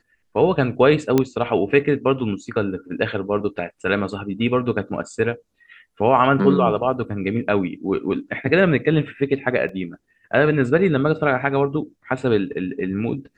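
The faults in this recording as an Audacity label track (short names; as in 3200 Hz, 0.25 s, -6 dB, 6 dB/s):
1.180000	1.180000	pop -5 dBFS
9.690000	9.690000	gap 2.8 ms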